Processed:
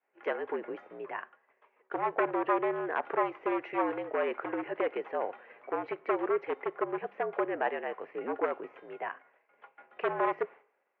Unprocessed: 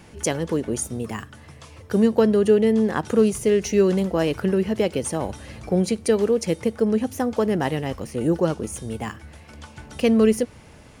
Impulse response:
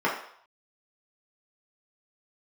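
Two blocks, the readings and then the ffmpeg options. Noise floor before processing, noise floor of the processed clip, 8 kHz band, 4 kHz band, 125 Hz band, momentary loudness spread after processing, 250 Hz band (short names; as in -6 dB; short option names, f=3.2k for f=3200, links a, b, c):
-47 dBFS, -75 dBFS, under -40 dB, under -15 dB, -29.0 dB, 11 LU, -17.5 dB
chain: -filter_complex "[0:a]aeval=exprs='0.188*(abs(mod(val(0)/0.188+3,4)-2)-1)':c=same,agate=range=-33dB:threshold=-33dB:ratio=3:detection=peak,asplit=2[a][b];[1:a]atrim=start_sample=2205[c];[b][c]afir=irnorm=-1:irlink=0,volume=-35.5dB[d];[a][d]amix=inputs=2:normalize=0,highpass=f=520:t=q:w=0.5412,highpass=f=520:t=q:w=1.307,lowpass=f=2.4k:t=q:w=0.5176,lowpass=f=2.4k:t=q:w=0.7071,lowpass=f=2.4k:t=q:w=1.932,afreqshift=-61,volume=-3dB"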